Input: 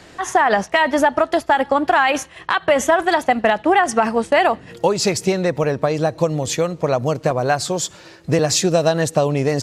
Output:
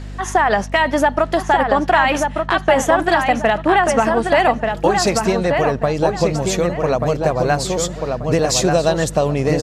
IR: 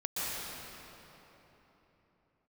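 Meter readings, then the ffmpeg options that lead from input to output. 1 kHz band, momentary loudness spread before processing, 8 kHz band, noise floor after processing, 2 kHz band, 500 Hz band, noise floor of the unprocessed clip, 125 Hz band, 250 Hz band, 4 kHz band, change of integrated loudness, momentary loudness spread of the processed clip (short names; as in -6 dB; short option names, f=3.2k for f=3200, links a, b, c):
+1.5 dB, 5 LU, 0.0 dB, -30 dBFS, +1.0 dB, +1.5 dB, -44 dBFS, +2.0 dB, +1.5 dB, +0.5 dB, +1.0 dB, 4 LU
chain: -filter_complex "[0:a]aeval=exprs='val(0)+0.0355*(sin(2*PI*50*n/s)+sin(2*PI*2*50*n/s)/2+sin(2*PI*3*50*n/s)/3+sin(2*PI*4*50*n/s)/4+sin(2*PI*5*50*n/s)/5)':c=same,asplit=2[a][b];[b]adelay=1186,lowpass=f=3.1k:p=1,volume=-4dB,asplit=2[c][d];[d]adelay=1186,lowpass=f=3.1k:p=1,volume=0.3,asplit=2[e][f];[f]adelay=1186,lowpass=f=3.1k:p=1,volume=0.3,asplit=2[g][h];[h]adelay=1186,lowpass=f=3.1k:p=1,volume=0.3[i];[c][e][g][i]amix=inputs=4:normalize=0[j];[a][j]amix=inputs=2:normalize=0"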